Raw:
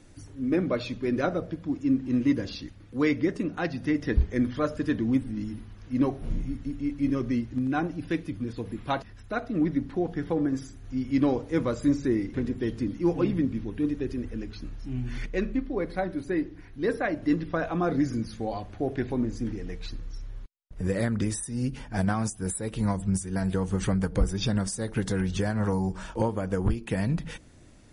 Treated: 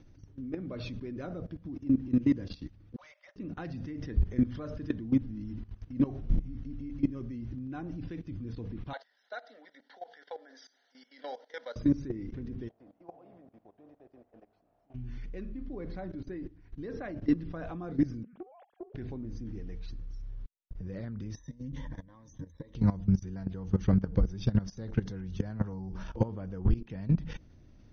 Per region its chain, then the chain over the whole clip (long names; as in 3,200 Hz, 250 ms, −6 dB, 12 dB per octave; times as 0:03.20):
0:02.96–0:03.36: Chebyshev high-pass filter 550 Hz, order 10 + transient designer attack 0 dB, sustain −8 dB + hard clipping −34.5 dBFS
0:08.93–0:11.76: Bessel high-pass filter 590 Hz, order 8 + parametric band 3,500 Hz +6.5 dB 2.8 octaves + phaser with its sweep stopped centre 1,700 Hz, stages 8
0:12.67–0:14.94: compressing power law on the bin magnitudes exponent 0.7 + resonant band-pass 680 Hz, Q 6.9
0:18.23–0:18.94: three sine waves on the formant tracks + downward compressor 16 to 1, threshold −35 dBFS + highs frequency-modulated by the lows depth 0.25 ms
0:21.37–0:22.75: downward compressor 16 to 1, threshold −37 dBFS + EQ curve with evenly spaced ripples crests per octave 1.1, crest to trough 16 dB
whole clip: Chebyshev low-pass filter 6,300 Hz, order 10; low-shelf EQ 300 Hz +11.5 dB; output level in coarse steps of 17 dB; level −4.5 dB